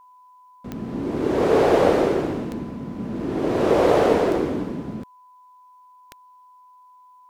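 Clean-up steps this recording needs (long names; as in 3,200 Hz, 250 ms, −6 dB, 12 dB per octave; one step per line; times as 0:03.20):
click removal
notch filter 1,000 Hz, Q 30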